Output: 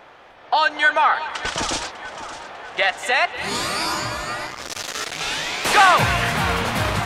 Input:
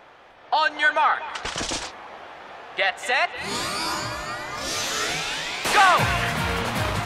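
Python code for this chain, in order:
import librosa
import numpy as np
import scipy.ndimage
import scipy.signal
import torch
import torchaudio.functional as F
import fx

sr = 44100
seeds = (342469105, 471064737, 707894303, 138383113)

y = fx.echo_feedback(x, sr, ms=599, feedback_pct=52, wet_db=-15.0)
y = fx.transformer_sat(y, sr, knee_hz=3500.0, at=(4.47, 5.21))
y = F.gain(torch.from_numpy(y), 3.0).numpy()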